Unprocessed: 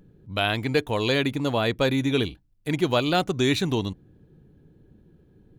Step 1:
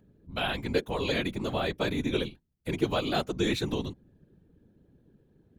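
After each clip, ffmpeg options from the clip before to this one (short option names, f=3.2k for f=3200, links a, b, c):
-af "highpass=46,afftfilt=real='hypot(re,im)*cos(2*PI*random(0))':imag='hypot(re,im)*sin(2*PI*random(1))':win_size=512:overlap=0.75"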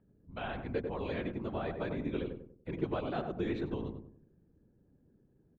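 -filter_complex "[0:a]lowpass=1.9k,asplit=2[a][b];[b]adelay=95,lowpass=f=900:p=1,volume=-3.5dB,asplit=2[c][d];[d]adelay=95,lowpass=f=900:p=1,volume=0.41,asplit=2[e][f];[f]adelay=95,lowpass=f=900:p=1,volume=0.41,asplit=2[g][h];[h]adelay=95,lowpass=f=900:p=1,volume=0.41,asplit=2[i][j];[j]adelay=95,lowpass=f=900:p=1,volume=0.41[k];[c][e][g][i][k]amix=inputs=5:normalize=0[l];[a][l]amix=inputs=2:normalize=0,volume=-7.5dB"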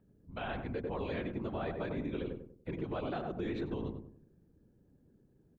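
-af "alimiter=level_in=5dB:limit=-24dB:level=0:latency=1:release=60,volume=-5dB,volume=1dB"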